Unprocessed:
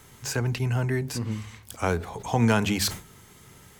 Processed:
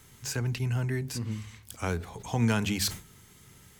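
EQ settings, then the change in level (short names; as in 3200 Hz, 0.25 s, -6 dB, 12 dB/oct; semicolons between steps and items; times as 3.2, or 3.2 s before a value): bell 710 Hz -6 dB 2.3 oct; -2.5 dB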